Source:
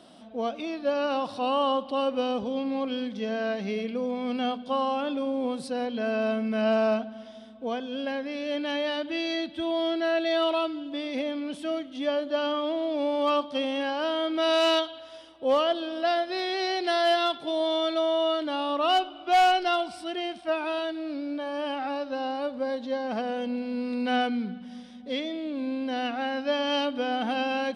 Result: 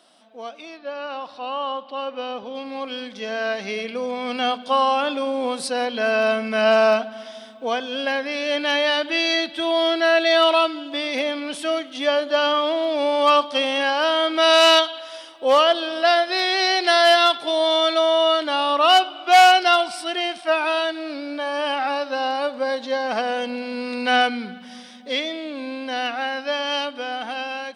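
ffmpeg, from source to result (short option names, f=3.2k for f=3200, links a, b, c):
-filter_complex "[0:a]asettb=1/sr,asplit=3[a][b][c];[a]atrim=end=0.774[d];[b]atrim=start=0.77:end=2.55,asetpts=PTS-STARTPTS,afade=t=in:d=0.004:c=qsin,afade=t=out:st=1.776:d=0.004:c=qsin,lowpass=3.8k[e];[c]atrim=start=2.546[f];[d][e]acrossfade=d=0.004:c1=hsin:c2=qsin[g];[g][f]acrossfade=d=0.004:c1=qsin:c2=hsin,highpass=f=1.3k:p=1,equalizer=f=3.3k:t=o:w=0.77:g=-3,dynaudnorm=f=950:g=7:m=12.5dB,volume=2.5dB"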